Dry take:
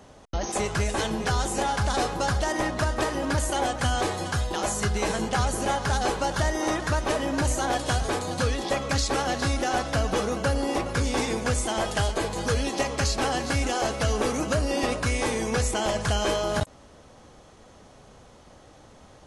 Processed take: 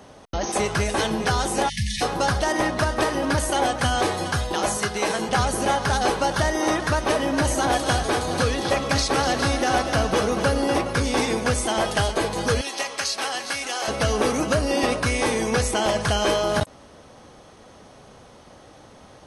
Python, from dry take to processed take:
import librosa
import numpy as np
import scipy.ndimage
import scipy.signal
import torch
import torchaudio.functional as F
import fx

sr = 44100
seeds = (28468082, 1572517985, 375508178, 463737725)

y = fx.spec_erase(x, sr, start_s=1.69, length_s=0.33, low_hz=220.0, high_hz=1700.0)
y = fx.highpass(y, sr, hz=280.0, slope=6, at=(4.77, 5.29))
y = fx.echo_single(y, sr, ms=247, db=-9.0, at=(7.36, 10.78), fade=0.02)
y = fx.highpass(y, sr, hz=1500.0, slope=6, at=(12.61, 13.88))
y = fx.low_shelf(y, sr, hz=64.0, db=-10.0)
y = fx.notch(y, sr, hz=7200.0, q=6.2)
y = y * 10.0 ** (4.5 / 20.0)